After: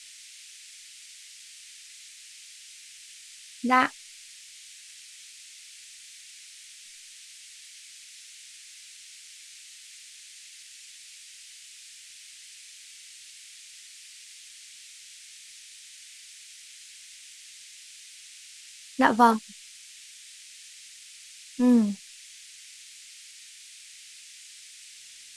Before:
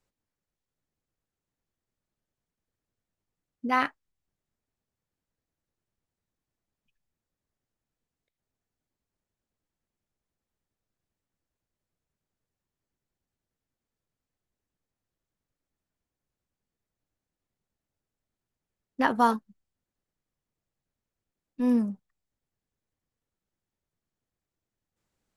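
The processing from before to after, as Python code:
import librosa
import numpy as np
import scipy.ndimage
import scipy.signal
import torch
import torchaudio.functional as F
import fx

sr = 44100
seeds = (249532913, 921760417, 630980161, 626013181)

y = fx.dmg_noise_band(x, sr, seeds[0], low_hz=2000.0, high_hz=9400.0, level_db=-52.0)
y = y * librosa.db_to_amplitude(4.0)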